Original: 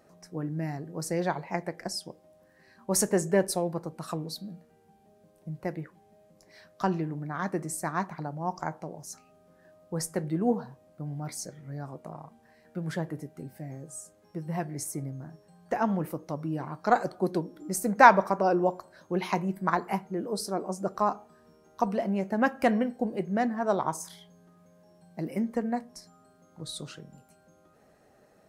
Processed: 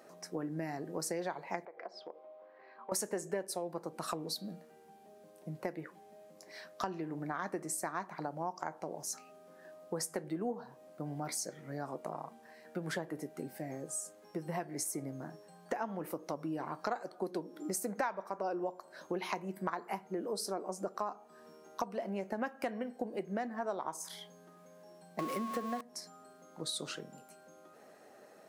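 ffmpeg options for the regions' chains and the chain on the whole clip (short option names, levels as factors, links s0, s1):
-filter_complex "[0:a]asettb=1/sr,asplit=3[s0][s1][s2];[s0]atrim=end=1.654[s3];[s1]atrim=start=1.65:end=2.92,asetpts=PTS-STARTPTS,afade=t=in:d=0.004:c=qsin,afade=t=out:st=1.266:d=0.004:c=qsin,highpass=430,equalizer=f=460:t=q:w=4:g=6,equalizer=f=730:t=q:w=4:g=4,equalizer=f=1100:t=q:w=4:g=5,equalizer=f=1700:t=q:w=4:g=-6,equalizer=f=2800:t=q:w=4:g=-5,lowpass=f=2900:w=0.5412,lowpass=f=2900:w=1.3066,bandreject=f=1800:w=14,acompressor=threshold=0.00501:ratio=4:attack=3.2:release=140:knee=1:detection=peak[s4];[s2]atrim=start=2.916[s5];[s3][s4]acrossfade=d=0.004:c1=hsin:c2=qsin[s6];[s6][s5]acrossfade=d=0.004:c1=qsin:c2=hsin,asettb=1/sr,asplit=3[s7][s8][s9];[s7]atrim=end=25.194[s10];[s8]atrim=start=25.19:end=25.81,asetpts=PTS-STARTPTS,afade=t=in:d=0.004:c=qsin,afade=t=out:st=0.616:d=0.004:c=qsin,aeval=exprs='val(0)+0.5*0.0211*sgn(val(0))':c=same,equalizer=f=970:t=o:w=0.26:g=-10,aeval=exprs='val(0)+0.02*sin(2*PI*1100*n/s)':c=same[s11];[s9]atrim=start=25.806[s12];[s10][s11]acrossfade=d=0.004:c1=hsin:c2=qsin[s13];[s13][s12]acrossfade=d=0.004:c1=qsin:c2=hsin,highpass=280,acompressor=threshold=0.0112:ratio=6,volume=1.68"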